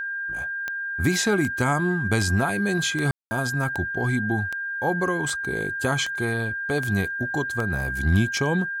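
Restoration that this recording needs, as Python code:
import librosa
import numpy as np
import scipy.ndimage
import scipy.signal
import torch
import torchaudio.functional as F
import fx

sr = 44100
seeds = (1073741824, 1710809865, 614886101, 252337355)

y = fx.fix_declip(x, sr, threshold_db=-11.0)
y = fx.fix_declick_ar(y, sr, threshold=10.0)
y = fx.notch(y, sr, hz=1600.0, q=30.0)
y = fx.fix_ambience(y, sr, seeds[0], print_start_s=0.45, print_end_s=0.95, start_s=3.11, end_s=3.31)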